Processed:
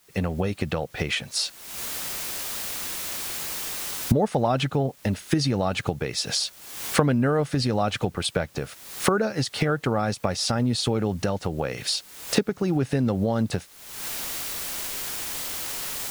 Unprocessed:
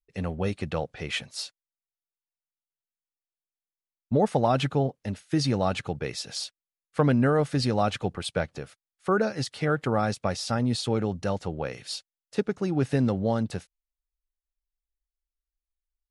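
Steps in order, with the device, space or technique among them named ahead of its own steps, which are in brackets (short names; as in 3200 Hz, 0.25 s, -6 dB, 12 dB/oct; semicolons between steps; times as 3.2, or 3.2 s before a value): cheap recorder with automatic gain (white noise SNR 33 dB; recorder AGC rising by 55 dB/s)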